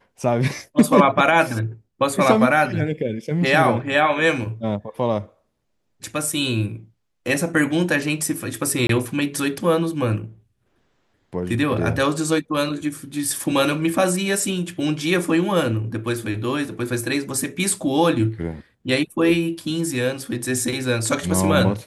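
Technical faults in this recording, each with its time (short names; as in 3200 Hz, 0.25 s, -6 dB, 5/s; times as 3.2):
8.87–8.89 gap 23 ms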